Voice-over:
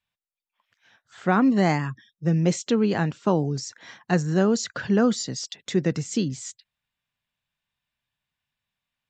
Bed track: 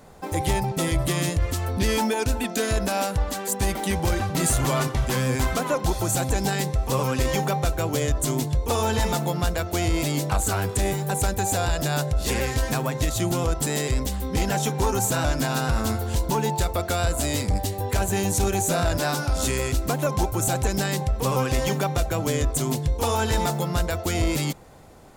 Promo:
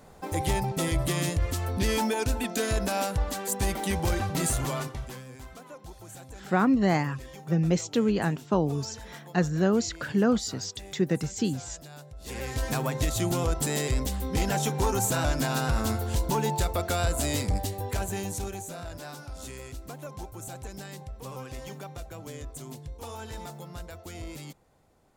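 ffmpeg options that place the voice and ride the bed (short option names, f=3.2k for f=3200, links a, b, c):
-filter_complex "[0:a]adelay=5250,volume=-3dB[a];[1:a]volume=15dB,afade=t=out:st=4.3:d=0.94:silence=0.125893,afade=t=in:st=12.18:d=0.63:silence=0.11885,afade=t=out:st=17.38:d=1.33:silence=0.211349[b];[a][b]amix=inputs=2:normalize=0"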